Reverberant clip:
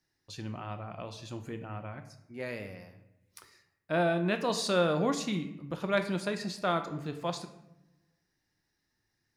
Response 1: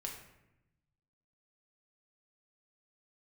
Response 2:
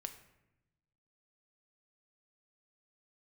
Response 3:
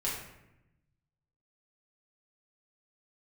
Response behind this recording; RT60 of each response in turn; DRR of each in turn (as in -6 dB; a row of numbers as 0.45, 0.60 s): 2; 0.90, 0.90, 0.90 s; -0.5, 7.0, -6.5 dB